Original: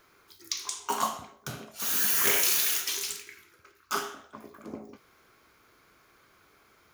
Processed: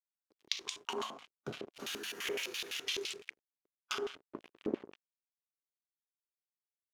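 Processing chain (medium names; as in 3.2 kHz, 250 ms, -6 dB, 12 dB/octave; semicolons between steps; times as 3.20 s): crossover distortion -43 dBFS; bass shelf 260 Hz +7 dB; compression 10:1, threshold -40 dBFS, peak gain reduction 20 dB; LFO band-pass square 5.9 Hz 390–2900 Hz; harmonic-percussive split harmonic +6 dB; trim +14.5 dB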